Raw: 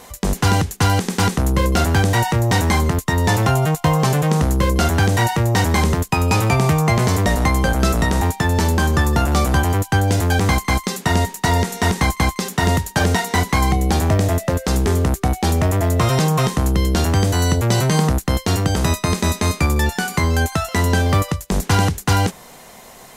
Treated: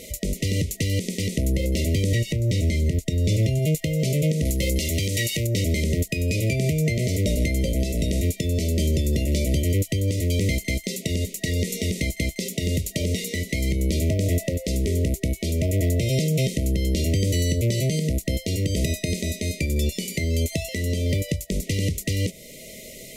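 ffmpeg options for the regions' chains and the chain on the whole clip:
-filter_complex "[0:a]asettb=1/sr,asplit=3[s0][s1][s2];[s0]atrim=end=2.124[s3];[s1]atrim=start=2.12:end=3.59,asetpts=PTS-STARTPTS,afade=t=in:d=0.004:c=qsin,afade=t=out:st=1.466:d=0.004:c=qsin,acrossover=split=8700[s4][s5];[s5]acompressor=threshold=0.0126:ratio=4:attack=1:release=60[s6];[s4][s6]amix=inputs=2:normalize=0,lowshelf=f=160:g=6.5[s7];[s2]atrim=start=3.586[s8];[s3][s7]acrossfade=d=0.004:c1=hsin:c2=qsin[s9];[s9][s8]acrossfade=d=0.004:c1=qsin:c2=hsin,asettb=1/sr,asplit=3[s10][s11][s12];[s10]atrim=end=4.454[s13];[s11]atrim=start=4.45:end=5.47,asetpts=PTS-STARTPTS,afade=t=in:d=0.004:c=qsin,afade=t=out:st=1.016:d=0.004:c=qsin,acontrast=56,tiltshelf=f=1400:g=-4.5[s14];[s12]atrim=start=5.466[s15];[s13][s14]acrossfade=d=0.004:c1=hsin:c2=qsin[s16];[s16][s15]acrossfade=d=0.004:c1=qsin:c2=hsin,afftfilt=real='re*(1-between(b*sr/4096,660,1900))':imag='im*(1-between(b*sr/4096,660,1900))':win_size=4096:overlap=0.75,acompressor=threshold=0.126:ratio=6,alimiter=limit=0.158:level=0:latency=1:release=424,volume=1.33"

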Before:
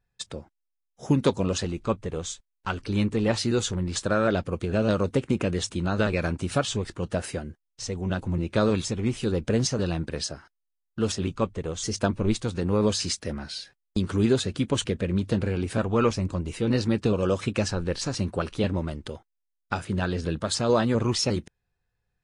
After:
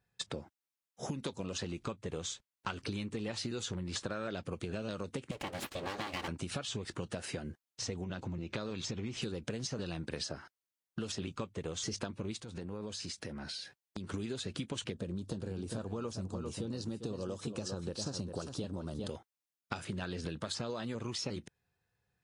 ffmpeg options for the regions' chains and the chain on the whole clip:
-filter_complex "[0:a]asettb=1/sr,asplit=3[s0][s1][s2];[s0]atrim=end=5.314[s3];[s1]atrim=start=5.31:end=6.28,asetpts=PTS-STARTPTS,afade=t=in:d=0.004:c=qsin,afade=t=out:st=0.966:d=0.004:c=qsin,highpass=140,aecho=1:1:3.6:0.71,atrim=end_sample=42777,aeval=exprs='abs(val(0))':c=same[s4];[s2]atrim=start=6.276[s5];[s3][s4]acrossfade=d=0.004:c1=hsin:c2=qsin[s6];[s6][s5]acrossfade=d=0.004:c1=qsin:c2=hsin,asettb=1/sr,asplit=3[s7][s8][s9];[s7]atrim=end=8.044[s10];[s8]atrim=start=8.04:end=9.22,asetpts=PTS-STARTPTS,afade=t=in:d=0.004:c=qsin,afade=t=out:st=1.176:d=0.004:c=qsin,lowpass=f=6900:w=0.5412,lowpass=f=6900:w=1.3066,acompressor=threshold=0.0224:ratio=2:attack=3.2:release=140:knee=1:detection=peak[s11];[s9]atrim=start=9.216[s12];[s10][s11]acrossfade=d=0.004:c1=hsin:c2=qsin[s13];[s13][s12]acrossfade=d=0.004:c1=qsin:c2=hsin,asettb=1/sr,asplit=3[s14][s15][s16];[s14]atrim=end=12.414[s17];[s15]atrim=start=12.41:end=14.14,asetpts=PTS-STARTPTS,afade=t=in:d=0.004:c=qsin,afade=t=out:st=1.726:d=0.004:c=qsin,bandreject=f=1200:w=16,acompressor=threshold=0.0112:ratio=6:attack=3.2:release=140:knee=1:detection=peak[s18];[s16]atrim=start=14.136[s19];[s17][s18]acrossfade=d=0.004:c1=hsin:c2=qsin[s20];[s20][s19]acrossfade=d=0.004:c1=qsin:c2=hsin,asettb=1/sr,asplit=3[s21][s22][s23];[s21]atrim=end=14.924[s24];[s22]atrim=start=14.92:end=19.08,asetpts=PTS-STARTPTS,afade=t=in:d=0.004:c=qsin,afade=t=out:st=4.156:d=0.004:c=qsin,equalizer=f=2200:t=o:w=0.97:g=-15,aecho=1:1:399:0.282,atrim=end_sample=183456[s25];[s23]atrim=start=19.076[s26];[s24][s25]acrossfade=d=0.004:c1=hsin:c2=qsin[s27];[s27][s26]acrossfade=d=0.004:c1=qsin:c2=hsin,acompressor=threshold=0.0316:ratio=6,highpass=89,acrossover=split=2200|6300[s28][s29][s30];[s28]acompressor=threshold=0.0141:ratio=4[s31];[s29]acompressor=threshold=0.01:ratio=4[s32];[s30]acompressor=threshold=0.00251:ratio=4[s33];[s31][s32][s33]amix=inputs=3:normalize=0,volume=1.12"

